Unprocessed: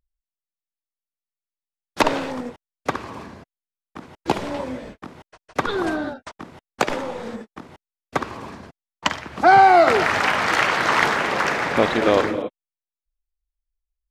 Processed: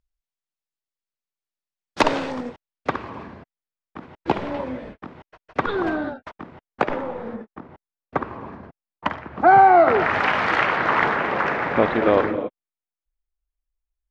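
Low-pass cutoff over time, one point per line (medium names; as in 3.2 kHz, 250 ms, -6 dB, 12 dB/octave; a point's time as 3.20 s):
2.22 s 6.8 kHz
3.12 s 2.8 kHz
6.16 s 2.8 kHz
7.23 s 1.6 kHz
9.86 s 1.6 kHz
10.35 s 3.3 kHz
10.84 s 2.1 kHz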